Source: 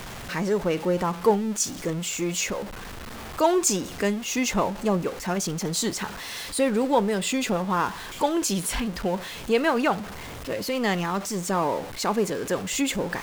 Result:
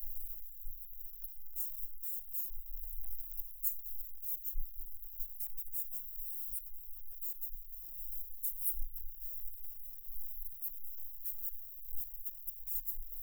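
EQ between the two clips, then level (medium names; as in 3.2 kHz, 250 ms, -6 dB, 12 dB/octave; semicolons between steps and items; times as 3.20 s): inverse Chebyshev band-stop 110–3800 Hz, stop band 80 dB; +10.0 dB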